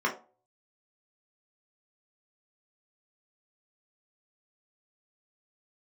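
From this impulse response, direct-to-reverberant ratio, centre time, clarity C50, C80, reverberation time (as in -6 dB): -3.0 dB, 17 ms, 11.5 dB, 17.0 dB, 0.40 s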